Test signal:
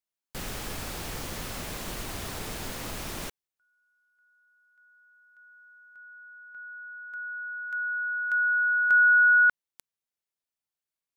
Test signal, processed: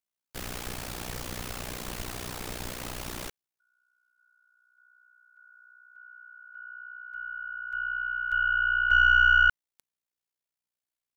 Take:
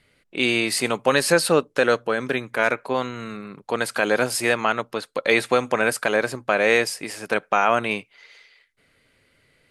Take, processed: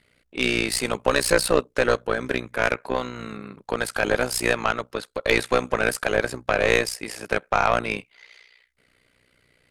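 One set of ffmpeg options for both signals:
ffmpeg -i in.wav -af "tremolo=f=61:d=0.857,aeval=exprs='0.596*(cos(1*acos(clip(val(0)/0.596,-1,1)))-cos(1*PI/2))+0.0376*(cos(5*acos(clip(val(0)/0.596,-1,1)))-cos(5*PI/2))+0.0596*(cos(6*acos(clip(val(0)/0.596,-1,1)))-cos(6*PI/2))+0.0106*(cos(7*acos(clip(val(0)/0.596,-1,1)))-cos(7*PI/2))':channel_layout=same,volume=1dB" out.wav

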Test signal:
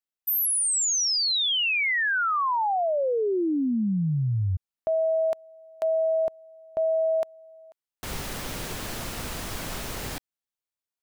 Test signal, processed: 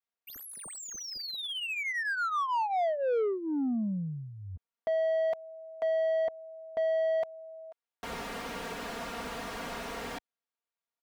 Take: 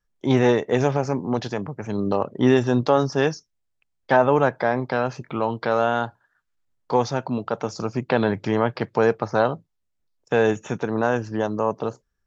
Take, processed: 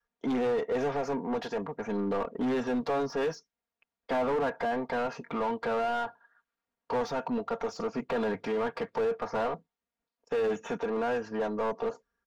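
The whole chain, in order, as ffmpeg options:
ffmpeg -i in.wav -filter_complex "[0:a]highpass=frequency=59:poles=1,aecho=1:1:4.3:0.73,adynamicequalizer=threshold=0.0224:dfrequency=230:dqfactor=1.1:tfrequency=230:tqfactor=1.1:attack=5:release=100:ratio=0.375:range=3:mode=cutabove:tftype=bell,asoftclip=type=hard:threshold=-18dB,asplit=2[link_01][link_02];[link_02]highpass=frequency=720:poles=1,volume=16dB,asoftclip=type=tanh:threshold=-18dB[link_03];[link_01][link_03]amix=inputs=2:normalize=0,lowpass=frequency=1100:poles=1,volume=-6dB,volume=-5.5dB" out.wav

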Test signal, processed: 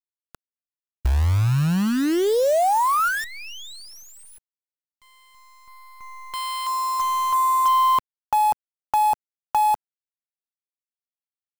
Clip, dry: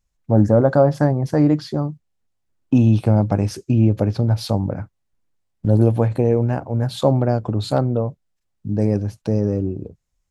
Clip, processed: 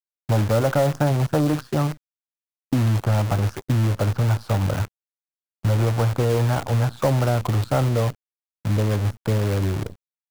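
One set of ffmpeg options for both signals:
ffmpeg -i in.wav -filter_complex "[0:a]firequalizer=gain_entry='entry(100,0);entry(160,-6);entry(240,-8);entry(1400,3);entry(2000,-20)':delay=0.05:min_phase=1,acrossover=split=670|3800[link_01][link_02][link_03];[link_01]acompressor=threshold=-25dB:ratio=4[link_04];[link_02]acompressor=threshold=-31dB:ratio=4[link_05];[link_03]acompressor=threshold=-53dB:ratio=4[link_06];[link_04][link_05][link_06]amix=inputs=3:normalize=0,asoftclip=type=tanh:threshold=-19dB,acrusher=bits=7:dc=4:mix=0:aa=0.000001,volume=8dB" out.wav

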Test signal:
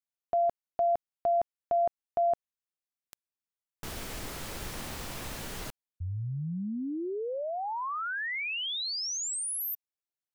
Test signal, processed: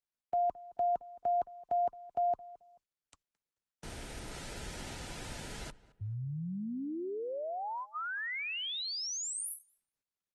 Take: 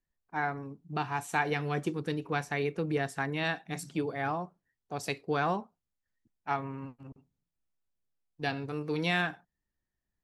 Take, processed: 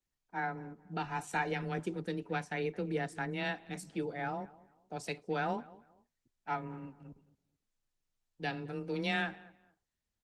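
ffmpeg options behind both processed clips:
ffmpeg -i in.wav -filter_complex "[0:a]asuperstop=centerf=1100:order=12:qfactor=6.1,asplit=2[link_01][link_02];[link_02]adelay=218,lowpass=frequency=2200:poles=1,volume=-19.5dB,asplit=2[link_03][link_04];[link_04]adelay=218,lowpass=frequency=2200:poles=1,volume=0.28[link_05];[link_03][link_05]amix=inputs=2:normalize=0[link_06];[link_01][link_06]amix=inputs=2:normalize=0,afreqshift=15,aresample=22050,aresample=44100,volume=-4dB" -ar 48000 -c:a libopus -b:a 20k out.opus

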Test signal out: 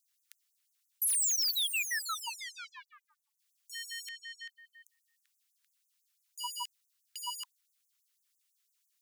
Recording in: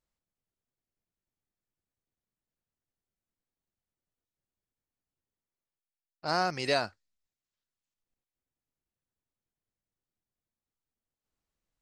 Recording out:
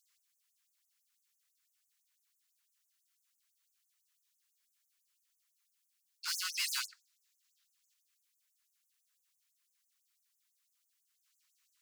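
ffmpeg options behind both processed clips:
ffmpeg -i in.wav -filter_complex "[0:a]asplit=2[link_01][link_02];[link_02]highpass=frequency=720:poles=1,volume=34dB,asoftclip=type=tanh:threshold=-12.5dB[link_03];[link_01][link_03]amix=inputs=2:normalize=0,lowpass=frequency=1900:poles=1,volume=-6dB,aderivative,afftfilt=real='re*gte(b*sr/1024,860*pow(6200/860,0.5+0.5*sin(2*PI*6*pts/sr)))':imag='im*gte(b*sr/1024,860*pow(6200/860,0.5+0.5*sin(2*PI*6*pts/sr)))':win_size=1024:overlap=0.75" out.wav

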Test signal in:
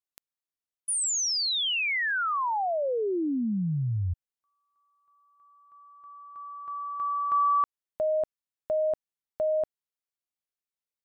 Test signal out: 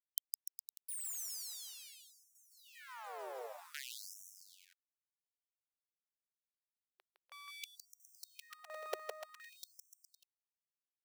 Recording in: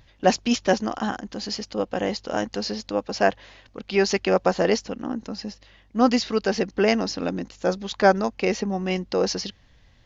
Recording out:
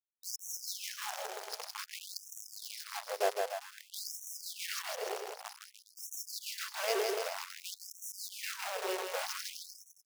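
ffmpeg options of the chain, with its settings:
ffmpeg -i in.wav -af "equalizer=frequency=1600:width=0.51:gain=-13.5,areverse,acompressor=mode=upward:threshold=-30dB:ratio=2.5:attack=23:release=173:knee=2.83:detection=peak,areverse,aeval=exprs='sgn(val(0))*max(abs(val(0))-0.0237,0)':channel_layout=same,acrusher=bits=6:dc=4:mix=0:aa=0.000001,aecho=1:1:160|296|411.6|509.9|593.4:0.631|0.398|0.251|0.158|0.1,afftfilt=real='re*gte(b*sr/1024,350*pow(5600/350,0.5+0.5*sin(2*PI*0.53*pts/sr)))':imag='im*gte(b*sr/1024,350*pow(5600/350,0.5+0.5*sin(2*PI*0.53*pts/sr)))':win_size=1024:overlap=0.75,volume=-2.5dB" out.wav

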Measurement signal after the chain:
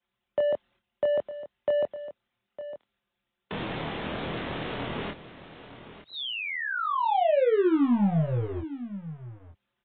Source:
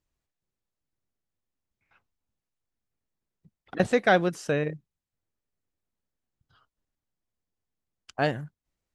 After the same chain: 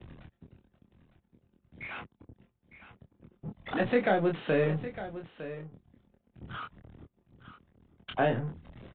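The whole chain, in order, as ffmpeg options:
ffmpeg -i in.wav -filter_complex "[0:a]aeval=exprs='val(0)+0.5*0.0224*sgn(val(0))':channel_layout=same,anlmdn=1.58,agate=range=-11dB:threshold=-56dB:ratio=16:detection=peak,highpass=80,acrossover=split=130|880[link_01][link_02][link_03];[link_01]aeval=exprs='(tanh(200*val(0)+0.75)-tanh(0.75))/200':channel_layout=same[link_04];[link_02]alimiter=limit=-21dB:level=0:latency=1:release=127[link_05];[link_03]acompressor=threshold=-35dB:ratio=12[link_06];[link_04][link_05][link_06]amix=inputs=3:normalize=0,asplit=2[link_07][link_08];[link_08]adelay=25,volume=-3.5dB[link_09];[link_07][link_09]amix=inputs=2:normalize=0,aecho=1:1:907:0.211,aresample=8000,aresample=44100,volume=2dB" -ar 24000 -c:a libmp3lame -b:a 32k out.mp3

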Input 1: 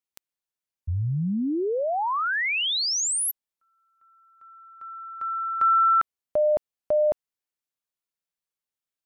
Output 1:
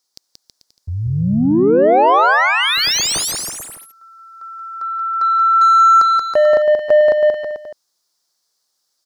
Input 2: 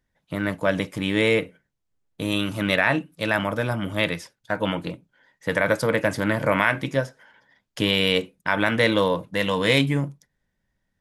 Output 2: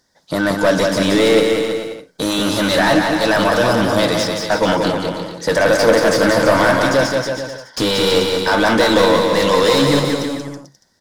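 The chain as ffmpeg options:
ffmpeg -i in.wav -filter_complex "[0:a]highshelf=frequency=3600:width_type=q:width=3:gain=11.5,asplit=2[link_01][link_02];[link_02]highpass=frequency=720:poles=1,volume=28dB,asoftclip=type=tanh:threshold=-2.5dB[link_03];[link_01][link_03]amix=inputs=2:normalize=0,lowpass=frequency=1300:poles=1,volume=-6dB,aecho=1:1:180|324|439.2|531.4|605.1:0.631|0.398|0.251|0.158|0.1,volume=-1dB" out.wav

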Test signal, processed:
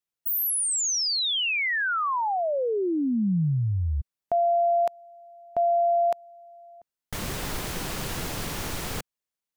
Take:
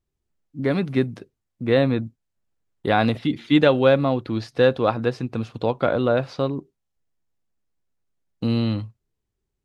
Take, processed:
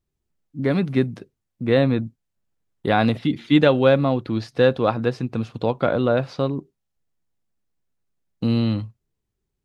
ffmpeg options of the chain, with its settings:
ffmpeg -i in.wav -af "equalizer=frequency=170:width=1.3:gain=3" out.wav

